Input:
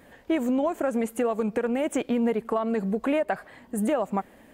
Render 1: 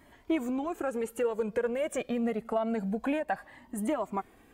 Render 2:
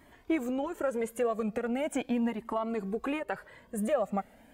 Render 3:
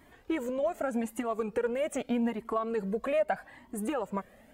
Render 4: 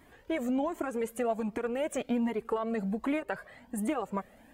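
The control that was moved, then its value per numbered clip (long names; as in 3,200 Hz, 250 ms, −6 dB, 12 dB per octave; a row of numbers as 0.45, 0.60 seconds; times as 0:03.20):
flanger whose copies keep moving one way, speed: 0.26, 0.39, 0.82, 1.3 Hertz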